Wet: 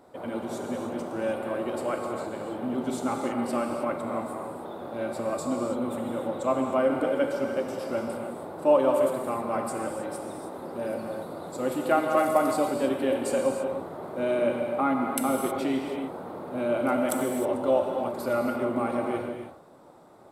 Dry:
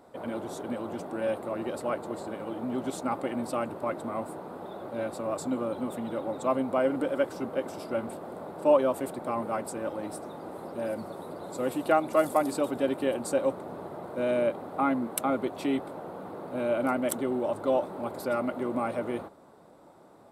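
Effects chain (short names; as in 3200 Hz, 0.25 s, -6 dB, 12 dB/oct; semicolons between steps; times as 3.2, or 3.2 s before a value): non-linear reverb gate 0.34 s flat, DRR 1.5 dB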